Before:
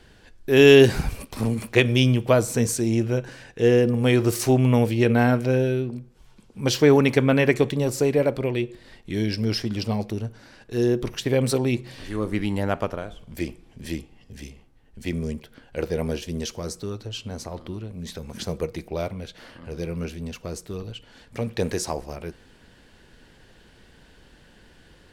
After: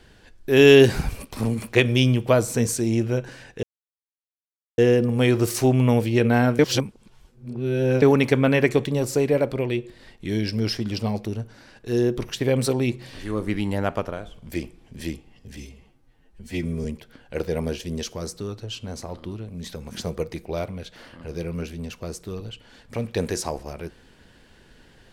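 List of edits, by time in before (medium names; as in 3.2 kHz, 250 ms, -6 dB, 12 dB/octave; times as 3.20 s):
3.63 s: insert silence 1.15 s
5.44–6.87 s: reverse
14.42–15.27 s: stretch 1.5×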